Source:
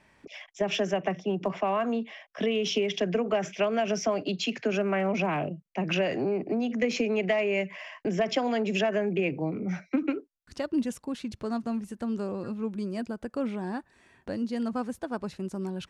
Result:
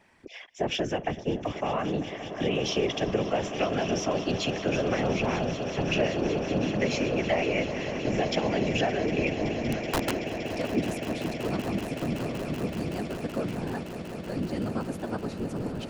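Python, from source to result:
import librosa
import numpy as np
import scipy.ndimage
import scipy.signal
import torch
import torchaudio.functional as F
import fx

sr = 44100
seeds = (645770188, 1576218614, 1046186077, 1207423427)

p1 = fx.dynamic_eq(x, sr, hz=900.0, q=0.81, threshold_db=-39.0, ratio=4.0, max_db=-3)
p2 = fx.whisperise(p1, sr, seeds[0])
p3 = fx.overflow_wrap(p2, sr, gain_db=21.0, at=(9.54, 10.6), fade=0.02)
y = p3 + fx.echo_swell(p3, sr, ms=189, loudest=8, wet_db=-15, dry=0)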